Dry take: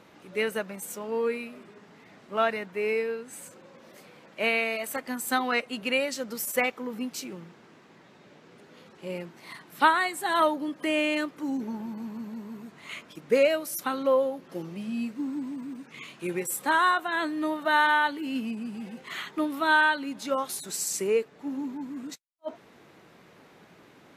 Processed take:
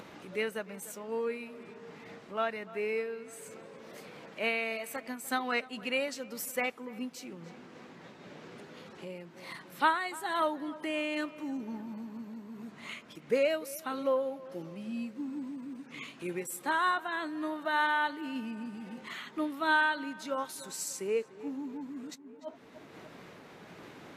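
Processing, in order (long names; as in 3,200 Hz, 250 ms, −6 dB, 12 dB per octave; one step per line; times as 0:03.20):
high-shelf EQ 11,000 Hz −5.5 dB
feedback echo with a low-pass in the loop 296 ms, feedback 55%, low-pass 2,900 Hz, level −19 dB
upward compression, threshold −33 dBFS
amplitude modulation by smooth noise, depth 50%
level −3.5 dB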